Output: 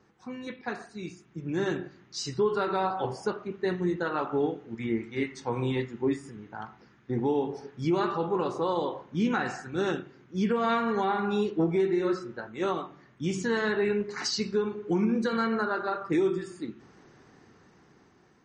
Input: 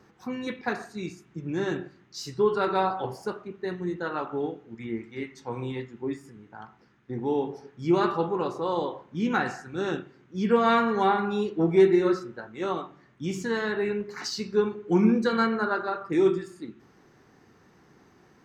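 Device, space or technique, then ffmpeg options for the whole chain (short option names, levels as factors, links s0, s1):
low-bitrate web radio: -af "dynaudnorm=f=460:g=7:m=3.55,alimiter=limit=0.251:level=0:latency=1:release=231,volume=0.531" -ar 44100 -c:a libmp3lame -b:a 40k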